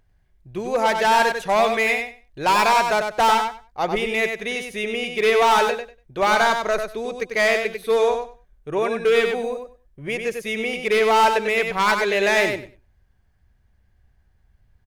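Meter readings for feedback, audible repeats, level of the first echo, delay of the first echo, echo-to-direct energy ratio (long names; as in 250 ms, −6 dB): 17%, 2, −6.0 dB, 96 ms, −6.0 dB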